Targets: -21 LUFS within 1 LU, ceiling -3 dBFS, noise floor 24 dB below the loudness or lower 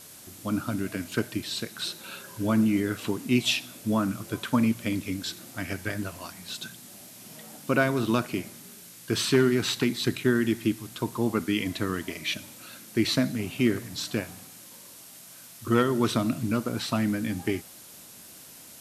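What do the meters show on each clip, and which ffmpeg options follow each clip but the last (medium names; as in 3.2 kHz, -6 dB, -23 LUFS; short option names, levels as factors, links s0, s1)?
noise floor -48 dBFS; noise floor target -52 dBFS; loudness -28.0 LUFS; peak level -8.0 dBFS; loudness target -21.0 LUFS
-> -af "afftdn=nr=6:nf=-48"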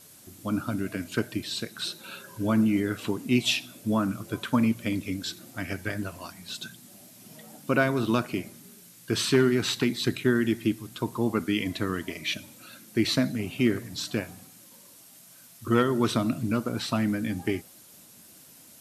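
noise floor -52 dBFS; loudness -28.0 LUFS; peak level -8.0 dBFS; loudness target -21.0 LUFS
-> -af "volume=2.24,alimiter=limit=0.708:level=0:latency=1"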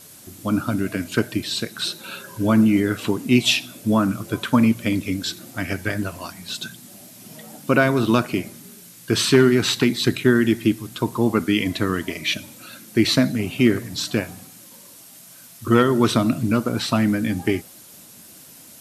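loudness -21.0 LUFS; peak level -3.0 dBFS; noise floor -45 dBFS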